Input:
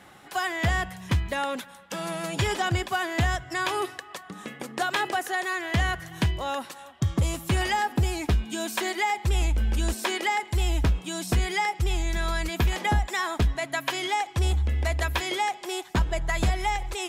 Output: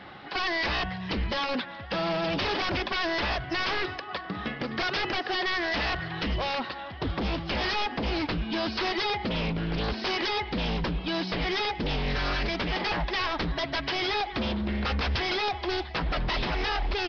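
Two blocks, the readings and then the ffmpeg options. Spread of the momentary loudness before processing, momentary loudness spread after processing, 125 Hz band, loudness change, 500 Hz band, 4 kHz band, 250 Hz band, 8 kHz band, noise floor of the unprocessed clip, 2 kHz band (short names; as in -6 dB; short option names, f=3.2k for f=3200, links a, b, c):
6 LU, 4 LU, -7.0 dB, -2.0 dB, +1.0 dB, +3.0 dB, +1.0 dB, -16.5 dB, -47 dBFS, -0.5 dB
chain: -af "acompressor=threshold=-24dB:ratio=3,aecho=1:1:1162|2324|3486|4648:0.0794|0.0421|0.0223|0.0118,aresample=11025,aeval=exprs='0.0355*(abs(mod(val(0)/0.0355+3,4)-2)-1)':c=same,aresample=44100,volume=6dB" -ar 22050 -c:a nellymoser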